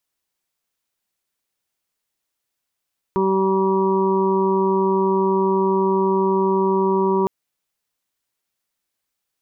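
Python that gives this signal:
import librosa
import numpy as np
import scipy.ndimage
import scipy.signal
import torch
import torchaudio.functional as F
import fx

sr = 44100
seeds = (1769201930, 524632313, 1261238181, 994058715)

y = fx.additive_steady(sr, length_s=4.11, hz=192.0, level_db=-22.0, upper_db=(4.5, -15.5, -20.0, 0.0, -8.5))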